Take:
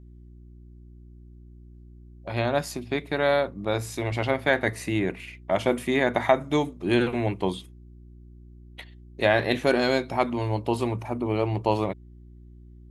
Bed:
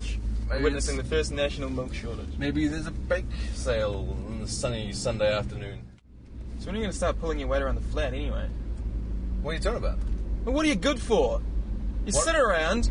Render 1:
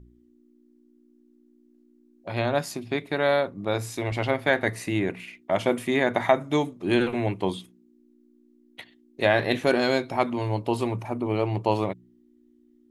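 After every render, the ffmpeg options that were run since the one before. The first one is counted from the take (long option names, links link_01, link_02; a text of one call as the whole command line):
ffmpeg -i in.wav -af "bandreject=frequency=60:width_type=h:width=4,bandreject=frequency=120:width_type=h:width=4,bandreject=frequency=180:width_type=h:width=4" out.wav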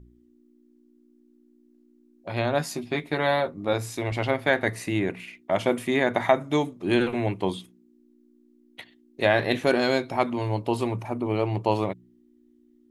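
ffmpeg -i in.wav -filter_complex "[0:a]asettb=1/sr,asplit=3[link_01][link_02][link_03];[link_01]atrim=end=2.584[link_04];[link_02]atrim=start=2.58:end=3.73,asetpts=PTS-STARTPTS,afade=type=in:duration=0.004:curve=qsin,afade=type=out:start_time=1.146:duration=0.004:curve=qsin,asplit=2[link_05][link_06];[link_06]adelay=13,volume=-5dB[link_07];[link_05][link_07]amix=inputs=2:normalize=0,atrim=end_sample=50715[link_08];[link_03]atrim=start=3.726[link_09];[link_04][link_08]acrossfade=duration=0.004:curve1=hsin:curve2=qsin[link_10];[link_10][link_09]acrossfade=duration=0.004:curve1=qsin:curve2=hsin" out.wav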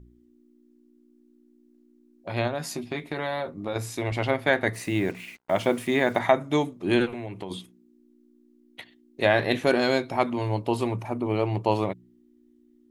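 ffmpeg -i in.wav -filter_complex "[0:a]asettb=1/sr,asplit=3[link_01][link_02][link_03];[link_01]atrim=end=2.474[link_04];[link_02]atrim=start=2.47:end=3.76,asetpts=PTS-STARTPTS,afade=type=in:duration=0.004:curve=qsin,afade=type=out:start_time=1.286:duration=0.004:curve=qsin,acompressor=threshold=-26dB:ratio=4:attack=3.2:release=140:knee=1:detection=peak[link_05];[link_03]atrim=start=3.756[link_06];[link_04][link_05]acrossfade=duration=0.004:curve1=hsin:curve2=qsin[link_07];[link_07][link_06]acrossfade=duration=0.004:curve1=qsin:curve2=hsin,asettb=1/sr,asplit=3[link_08][link_09][link_10];[link_08]atrim=end=4.744[link_11];[link_09]atrim=start=4.74:end=6.19,asetpts=PTS-STARTPTS,afade=type=in:duration=0.004:curve=qsin,afade=type=out:start_time=1.446:duration=0.004:curve=qsin,acrusher=bits=7:mix=0:aa=0.5[link_12];[link_10]atrim=start=6.186[link_13];[link_11][link_12]acrossfade=duration=0.004:curve1=hsin:curve2=qsin[link_14];[link_14][link_13]acrossfade=duration=0.004:curve1=qsin:curve2=hsin,asplit=3[link_15][link_16][link_17];[link_15]afade=type=out:start_time=7.05:duration=0.02[link_18];[link_16]acompressor=threshold=-31dB:ratio=6:attack=3.2:release=140:knee=1:detection=peak,afade=type=in:start_time=7.05:duration=0.02,afade=type=out:start_time=7.5:duration=0.02[link_19];[link_17]afade=type=in:start_time=7.5:duration=0.02[link_20];[link_18][link_19][link_20]amix=inputs=3:normalize=0" out.wav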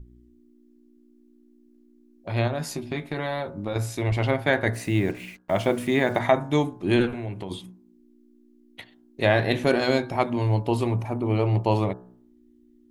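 ffmpeg -i in.wav -af "lowshelf=frequency=140:gain=11,bandreject=frequency=61.45:width_type=h:width=4,bandreject=frequency=122.9:width_type=h:width=4,bandreject=frequency=184.35:width_type=h:width=4,bandreject=frequency=245.8:width_type=h:width=4,bandreject=frequency=307.25:width_type=h:width=4,bandreject=frequency=368.7:width_type=h:width=4,bandreject=frequency=430.15:width_type=h:width=4,bandreject=frequency=491.6:width_type=h:width=4,bandreject=frequency=553.05:width_type=h:width=4,bandreject=frequency=614.5:width_type=h:width=4,bandreject=frequency=675.95:width_type=h:width=4,bandreject=frequency=737.4:width_type=h:width=4,bandreject=frequency=798.85:width_type=h:width=4,bandreject=frequency=860.3:width_type=h:width=4,bandreject=frequency=921.75:width_type=h:width=4,bandreject=frequency=983.2:width_type=h:width=4,bandreject=frequency=1044.65:width_type=h:width=4,bandreject=frequency=1106.1:width_type=h:width=4,bandreject=frequency=1167.55:width_type=h:width=4,bandreject=frequency=1229:width_type=h:width=4,bandreject=frequency=1290.45:width_type=h:width=4,bandreject=frequency=1351.9:width_type=h:width=4,bandreject=frequency=1413.35:width_type=h:width=4,bandreject=frequency=1474.8:width_type=h:width=4,bandreject=frequency=1536.25:width_type=h:width=4,bandreject=frequency=1597.7:width_type=h:width=4,bandreject=frequency=1659.15:width_type=h:width=4,bandreject=frequency=1720.6:width_type=h:width=4" out.wav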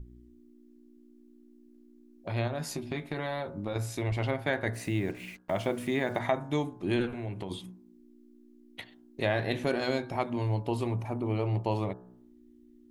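ffmpeg -i in.wav -af "acompressor=threshold=-39dB:ratio=1.5" out.wav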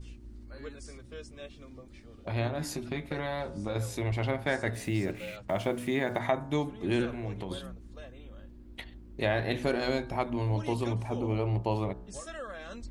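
ffmpeg -i in.wav -i bed.wav -filter_complex "[1:a]volume=-18.5dB[link_01];[0:a][link_01]amix=inputs=2:normalize=0" out.wav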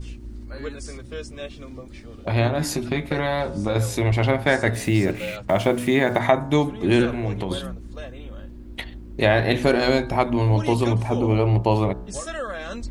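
ffmpeg -i in.wav -af "volume=10.5dB" out.wav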